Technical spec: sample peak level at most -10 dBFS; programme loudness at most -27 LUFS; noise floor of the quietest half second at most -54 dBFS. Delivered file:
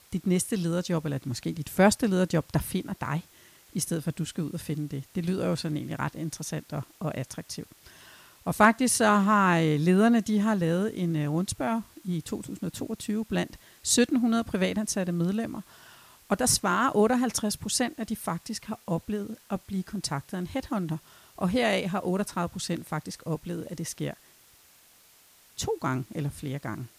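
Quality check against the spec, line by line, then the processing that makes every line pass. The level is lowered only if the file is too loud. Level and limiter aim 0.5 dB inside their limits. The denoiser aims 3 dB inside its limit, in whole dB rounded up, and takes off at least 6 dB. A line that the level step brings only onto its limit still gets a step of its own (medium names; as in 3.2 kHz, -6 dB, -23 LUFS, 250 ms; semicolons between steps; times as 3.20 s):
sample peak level -5.5 dBFS: fail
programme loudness -28.0 LUFS: pass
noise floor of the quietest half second -58 dBFS: pass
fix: peak limiter -10.5 dBFS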